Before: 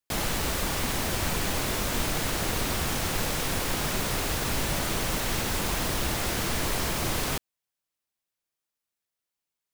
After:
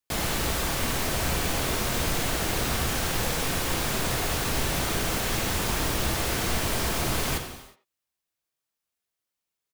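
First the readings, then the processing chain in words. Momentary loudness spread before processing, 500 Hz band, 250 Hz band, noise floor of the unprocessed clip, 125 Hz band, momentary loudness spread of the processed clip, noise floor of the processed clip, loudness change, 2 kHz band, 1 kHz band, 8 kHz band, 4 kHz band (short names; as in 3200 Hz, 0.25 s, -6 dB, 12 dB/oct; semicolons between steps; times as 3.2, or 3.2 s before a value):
0 LU, +1.5 dB, +1.0 dB, under -85 dBFS, +1.5 dB, 0 LU, under -85 dBFS, +1.5 dB, +1.5 dB, +1.5 dB, +1.0 dB, +1.5 dB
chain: speakerphone echo 90 ms, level -13 dB; non-linear reverb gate 0.39 s falling, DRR 5 dB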